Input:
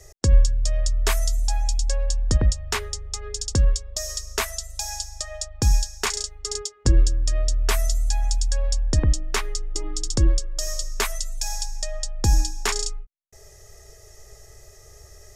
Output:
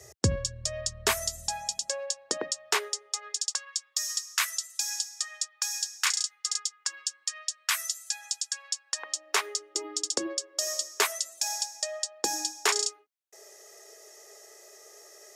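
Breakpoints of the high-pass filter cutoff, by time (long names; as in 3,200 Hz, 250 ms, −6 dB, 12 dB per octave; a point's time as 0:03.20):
high-pass filter 24 dB per octave
0:01.40 93 Hz
0:02.14 360 Hz
0:02.87 360 Hz
0:03.70 1,200 Hz
0:08.84 1,200 Hz
0:09.48 350 Hz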